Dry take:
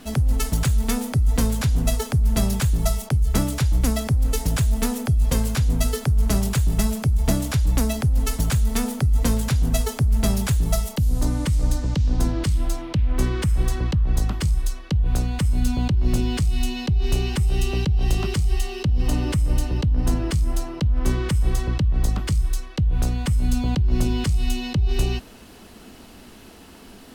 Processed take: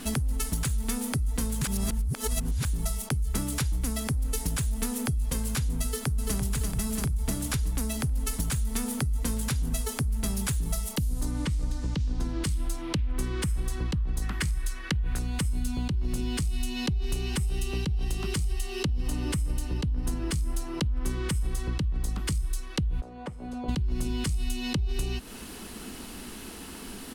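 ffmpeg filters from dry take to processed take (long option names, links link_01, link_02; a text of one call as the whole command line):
ffmpeg -i in.wav -filter_complex "[0:a]asplit=2[link_01][link_02];[link_02]afade=type=in:start_time=5.84:duration=0.01,afade=type=out:start_time=6.37:duration=0.01,aecho=0:1:340|680|1020|1360|1700|2040|2380|2720|3060:0.707946|0.424767|0.25486|0.152916|0.0917498|0.0550499|0.0330299|0.019818|0.0118908[link_03];[link_01][link_03]amix=inputs=2:normalize=0,asettb=1/sr,asplit=3[link_04][link_05][link_06];[link_04]atrim=end=11.314[link_07];[link_05]atrim=start=11.31:end=12.32,asetpts=PTS-STARTPTS,afade=type=in:duration=0.004:curve=qsin,afade=type=out:start_time=1.006:duration=0.004:curve=qsin,acrossover=split=6000[link_08][link_09];[link_09]acompressor=threshold=-51dB:ratio=4:attack=1:release=60[link_10];[link_08][link_10]amix=inputs=2:normalize=0[link_11];[link_06]atrim=start=12.316[link_12];[link_07][link_11]acrossfade=duration=0.004:curve1=hsin:curve2=qsin[link_13];[link_13][link_12]acrossfade=duration=0.004:curve1=qsin:curve2=hsin,asettb=1/sr,asplit=3[link_14][link_15][link_16];[link_14]atrim=end=14.224[link_17];[link_15]atrim=start=14.22:end=15.19,asetpts=PTS-STARTPTS,afade=type=in:duration=0.004:curve=qsin,afade=type=out:start_time=0.966:duration=0.004:curve=qsin,equalizer=frequency=1800:width=1.4:gain=10.5[link_18];[link_16]atrim=start=15.186[link_19];[link_17][link_18]acrossfade=duration=0.004:curve1=hsin:curve2=qsin[link_20];[link_20][link_19]acrossfade=duration=0.004:curve1=qsin:curve2=hsin,asplit=3[link_21][link_22][link_23];[link_21]afade=type=out:start_time=23:duration=0.02[link_24];[link_22]bandpass=frequency=610:width_type=q:width=2.1,afade=type=in:start_time=23:duration=0.02,afade=type=out:start_time=23.68:duration=0.02[link_25];[link_23]afade=type=in:start_time=23.68:duration=0.02[link_26];[link_24][link_25][link_26]amix=inputs=3:normalize=0,asplit=3[link_27][link_28][link_29];[link_27]atrim=end=1.622[link_30];[link_28]atrim=start=1.618:end=2.652,asetpts=PTS-STARTPTS,areverse[link_31];[link_29]atrim=start=2.648[link_32];[link_30][link_31]acrossfade=duration=0.004:curve1=hsin:curve2=hsin[link_33];[link_33][link_32]acrossfade=duration=0.004:curve1=hsin:curve2=hsin,equalizer=frequency=100:width_type=o:width=0.67:gain=-5,equalizer=frequency=630:width_type=o:width=0.67:gain=-6,equalizer=frequency=10000:width_type=o:width=0.67:gain=7,acompressor=threshold=-30dB:ratio=6,volume=4dB" out.wav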